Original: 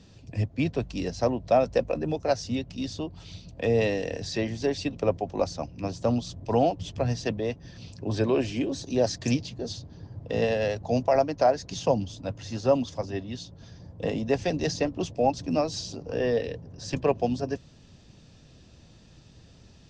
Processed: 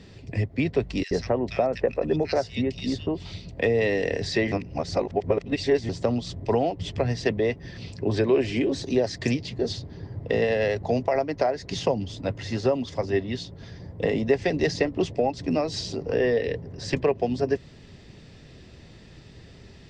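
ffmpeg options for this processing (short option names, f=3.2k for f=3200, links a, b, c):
-filter_complex "[0:a]asettb=1/sr,asplit=3[a][b][c];[a]atrim=end=1.034[d];[b]atrim=start=1.03:end=3.32,asetpts=PTS-STARTPTS,afade=t=in:d=0.004:c=qsin,afade=t=out:st=2.286:d=0.004:c=qsin,acrossover=split=2000[e][f];[e]adelay=80[g];[g][f]amix=inputs=2:normalize=0,atrim=end_sample=100989[h];[c]atrim=start=3.316[i];[d][h]acrossfade=d=0.004:c1=hsin:c2=qsin[j];[j][i]acrossfade=d=0.004:c1=qsin:c2=hsin,asplit=3[k][l][m];[k]atrim=end=4.522[n];[l]atrim=start=4.518:end=5.892,asetpts=PTS-STARTPTS,areverse[o];[m]atrim=start=5.888[p];[n][o]acrossfade=d=0.004:c1=hsin:c2=hsin[q];[q][p]acrossfade=d=0.004:c1=hsin:c2=hsin,acompressor=threshold=-27dB:ratio=4,equalizer=f=400:t=o:w=0.33:g=7,equalizer=f=2k:t=o:w=0.33:g=10,equalizer=f=6.3k:t=o:w=0.33:g=-7,volume=5dB"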